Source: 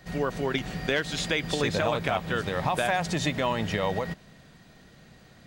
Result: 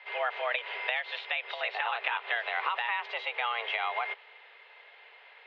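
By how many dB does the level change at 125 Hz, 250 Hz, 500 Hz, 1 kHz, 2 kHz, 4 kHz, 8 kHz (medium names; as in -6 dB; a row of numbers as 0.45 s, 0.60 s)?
under -40 dB, under -35 dB, -10.0 dB, -2.0 dB, 0.0 dB, -4.0 dB, under -35 dB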